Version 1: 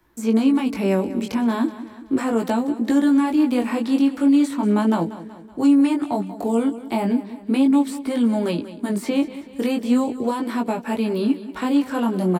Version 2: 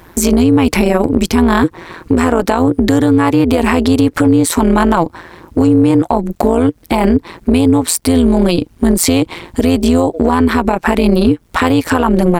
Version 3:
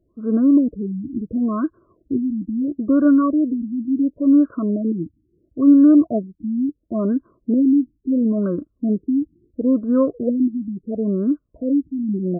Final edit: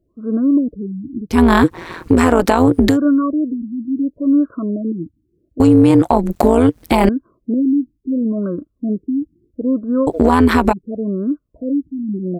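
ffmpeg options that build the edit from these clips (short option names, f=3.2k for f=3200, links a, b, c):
-filter_complex "[1:a]asplit=3[a][b][c];[2:a]asplit=4[d][e][f][g];[d]atrim=end=1.39[h];[a]atrim=start=1.29:end=2.98[i];[e]atrim=start=2.88:end=5.602[j];[b]atrim=start=5.598:end=7.092[k];[f]atrim=start=7.088:end=10.072[l];[c]atrim=start=10.068:end=10.732[m];[g]atrim=start=10.728[n];[h][i]acrossfade=d=0.1:c1=tri:c2=tri[o];[o][j]acrossfade=d=0.1:c1=tri:c2=tri[p];[p][k]acrossfade=d=0.004:c1=hsin:c2=hsin[q];[q][l]acrossfade=d=0.004:c1=hsin:c2=hsin[r];[r][m]acrossfade=d=0.004:c1=hsin:c2=hsin[s];[s][n]acrossfade=d=0.004:c1=hsin:c2=hsin"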